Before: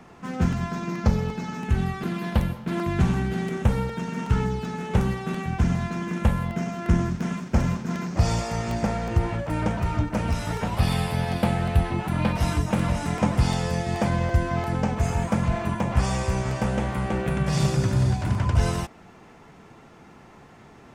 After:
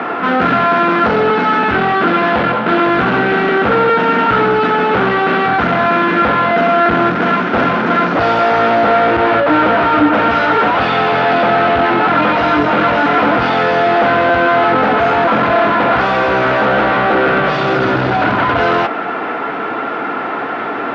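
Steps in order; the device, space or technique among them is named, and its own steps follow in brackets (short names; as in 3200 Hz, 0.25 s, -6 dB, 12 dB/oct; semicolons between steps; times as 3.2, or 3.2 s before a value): overdrive pedal into a guitar cabinet (overdrive pedal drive 39 dB, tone 3000 Hz, clips at -6.5 dBFS; speaker cabinet 92–3600 Hz, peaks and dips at 93 Hz -8 dB, 160 Hz -6 dB, 290 Hz +9 dB, 460 Hz +5 dB, 690 Hz +5 dB, 1400 Hz +10 dB); gain -2 dB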